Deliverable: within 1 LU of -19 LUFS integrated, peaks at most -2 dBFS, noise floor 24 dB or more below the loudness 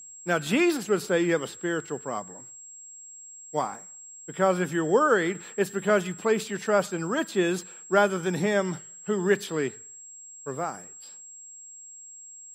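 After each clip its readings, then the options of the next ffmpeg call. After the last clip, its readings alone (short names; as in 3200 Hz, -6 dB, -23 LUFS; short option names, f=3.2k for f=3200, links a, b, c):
steady tone 7600 Hz; tone level -43 dBFS; loudness -26.5 LUFS; peak -6.5 dBFS; loudness target -19.0 LUFS
-> -af "bandreject=f=7.6k:w=30"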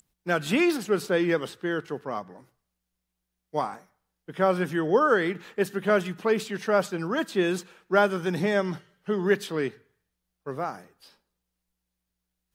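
steady tone none; loudness -26.5 LUFS; peak -6.5 dBFS; loudness target -19.0 LUFS
-> -af "volume=7.5dB,alimiter=limit=-2dB:level=0:latency=1"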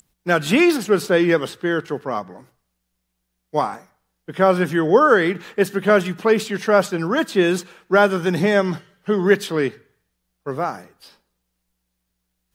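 loudness -19.0 LUFS; peak -2.0 dBFS; noise floor -75 dBFS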